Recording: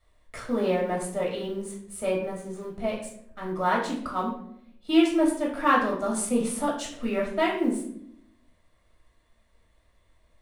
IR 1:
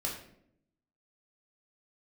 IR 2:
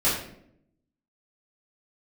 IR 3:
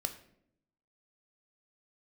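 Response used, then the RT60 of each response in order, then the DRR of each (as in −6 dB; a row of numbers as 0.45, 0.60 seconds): 1; 0.70, 0.70, 0.70 seconds; −3.5, −11.5, 6.5 decibels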